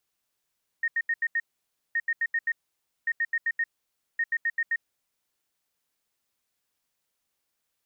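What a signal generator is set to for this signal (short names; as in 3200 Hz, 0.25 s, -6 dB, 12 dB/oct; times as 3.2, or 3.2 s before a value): beep pattern sine 1850 Hz, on 0.05 s, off 0.08 s, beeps 5, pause 0.55 s, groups 4, -22.5 dBFS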